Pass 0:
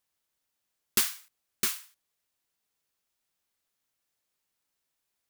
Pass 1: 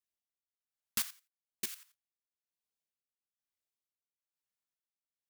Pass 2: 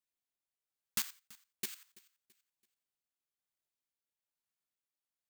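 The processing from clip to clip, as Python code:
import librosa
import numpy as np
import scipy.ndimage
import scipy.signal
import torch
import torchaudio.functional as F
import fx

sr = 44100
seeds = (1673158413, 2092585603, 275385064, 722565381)

y1 = fx.filter_lfo_notch(x, sr, shape='sine', hz=0.84, low_hz=330.0, high_hz=1700.0, q=2.0)
y1 = fx.level_steps(y1, sr, step_db=13)
y1 = y1 * (1.0 - 0.9 / 2.0 + 0.9 / 2.0 * np.cos(2.0 * np.pi * 1.1 * (np.arange(len(y1)) / sr)))
y1 = F.gain(torch.from_numpy(y1), -4.0).numpy()
y2 = fx.echo_feedback(y1, sr, ms=333, feedback_pct=37, wet_db=-22.0)
y2 = (np.kron(scipy.signal.resample_poly(y2, 1, 4), np.eye(4)[0]) * 4)[:len(y2)]
y2 = F.gain(torch.from_numpy(y2), -1.0).numpy()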